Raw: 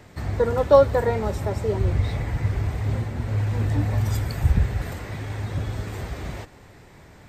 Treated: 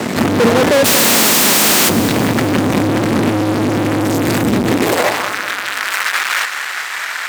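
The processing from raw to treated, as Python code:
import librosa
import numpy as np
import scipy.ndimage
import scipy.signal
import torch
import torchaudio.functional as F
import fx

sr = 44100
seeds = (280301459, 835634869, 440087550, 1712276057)

p1 = fx.spec_flatten(x, sr, power=0.14, at=(0.84, 1.88), fade=0.02)
p2 = fx.dynamic_eq(p1, sr, hz=110.0, q=2.9, threshold_db=-37.0, ratio=4.0, max_db=6)
p3 = fx.over_compress(p2, sr, threshold_db=-23.0, ratio=-1.0)
p4 = p2 + (p3 * 10.0 ** (2.0 / 20.0))
p5 = fx.fuzz(p4, sr, gain_db=35.0, gate_db=-42.0)
p6 = fx.filter_sweep_highpass(p5, sr, from_hz=220.0, to_hz=1500.0, start_s=4.71, end_s=5.36, q=2.1)
p7 = p6 + fx.echo_feedback(p6, sr, ms=197, feedback_pct=54, wet_db=-13.0, dry=0)
y = p7 * 10.0 ** (2.5 / 20.0)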